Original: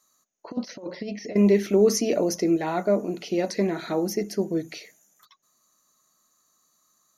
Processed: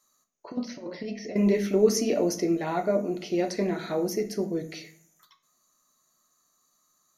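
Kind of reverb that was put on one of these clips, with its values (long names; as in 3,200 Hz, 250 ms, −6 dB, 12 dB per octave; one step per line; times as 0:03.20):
rectangular room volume 50 cubic metres, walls mixed, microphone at 0.31 metres
level −3 dB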